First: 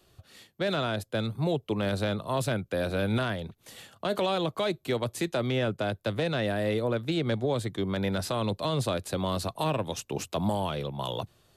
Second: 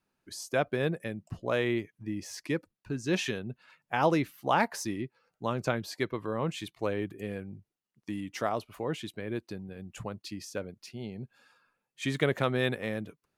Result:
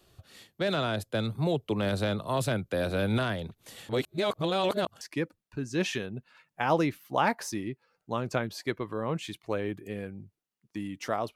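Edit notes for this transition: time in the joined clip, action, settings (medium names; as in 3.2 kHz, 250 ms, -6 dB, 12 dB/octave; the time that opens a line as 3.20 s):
first
3.89–5.01 s: reverse
5.01 s: go over to second from 2.34 s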